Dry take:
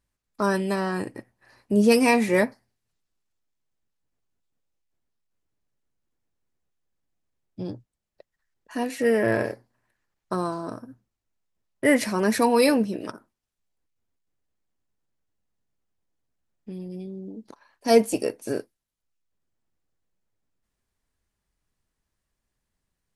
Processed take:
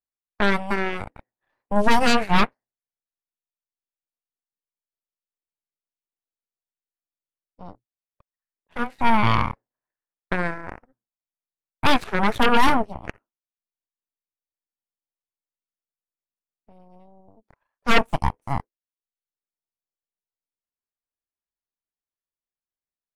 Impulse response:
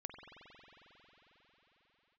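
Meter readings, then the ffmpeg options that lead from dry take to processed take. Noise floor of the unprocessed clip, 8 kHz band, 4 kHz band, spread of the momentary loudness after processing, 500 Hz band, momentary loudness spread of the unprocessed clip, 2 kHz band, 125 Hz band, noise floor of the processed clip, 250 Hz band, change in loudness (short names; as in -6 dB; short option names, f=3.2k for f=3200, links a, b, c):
-83 dBFS, -5.0 dB, +6.5 dB, 16 LU, -5.0 dB, 18 LU, +4.5 dB, +4.5 dB, under -85 dBFS, -2.5 dB, +1.0 dB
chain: -filter_complex "[0:a]acrossover=split=310 2100:gain=0.251 1 0.158[a][b][c];[a][b][c]amix=inputs=3:normalize=0,aeval=exprs='0.447*(cos(1*acos(clip(val(0)/0.447,-1,1)))-cos(1*PI/2))+0.2*(cos(3*acos(clip(val(0)/0.447,-1,1)))-cos(3*PI/2))+0.0158*(cos(5*acos(clip(val(0)/0.447,-1,1)))-cos(5*PI/2))+0.224*(cos(8*acos(clip(val(0)/0.447,-1,1)))-cos(8*PI/2))':c=same,volume=-1dB"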